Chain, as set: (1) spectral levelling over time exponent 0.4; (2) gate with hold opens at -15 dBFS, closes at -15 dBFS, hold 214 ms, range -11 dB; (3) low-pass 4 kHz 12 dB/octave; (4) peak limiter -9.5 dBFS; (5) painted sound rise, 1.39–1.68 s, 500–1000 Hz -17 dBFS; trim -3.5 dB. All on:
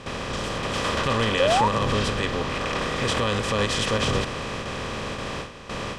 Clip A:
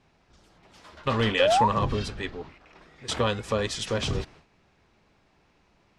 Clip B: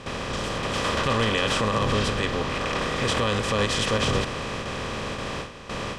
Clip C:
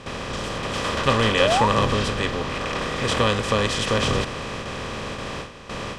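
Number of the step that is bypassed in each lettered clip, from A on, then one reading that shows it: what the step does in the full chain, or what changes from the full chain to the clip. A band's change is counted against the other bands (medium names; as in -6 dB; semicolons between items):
1, 2 kHz band -2.5 dB; 5, crest factor change -3.5 dB; 4, crest factor change +3.5 dB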